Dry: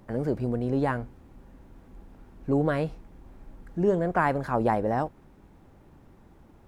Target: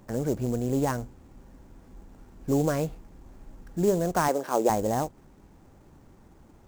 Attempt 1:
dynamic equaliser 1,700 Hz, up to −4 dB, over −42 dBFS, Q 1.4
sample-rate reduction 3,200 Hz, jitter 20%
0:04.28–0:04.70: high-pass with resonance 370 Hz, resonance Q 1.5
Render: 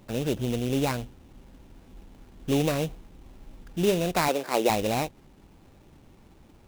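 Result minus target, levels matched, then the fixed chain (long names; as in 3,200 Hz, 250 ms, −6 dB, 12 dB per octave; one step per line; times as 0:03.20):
sample-rate reduction: distortion +7 dB
dynamic equaliser 1,700 Hz, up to −4 dB, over −42 dBFS, Q 1.4
sample-rate reduction 7,300 Hz, jitter 20%
0:04.28–0:04.70: high-pass with resonance 370 Hz, resonance Q 1.5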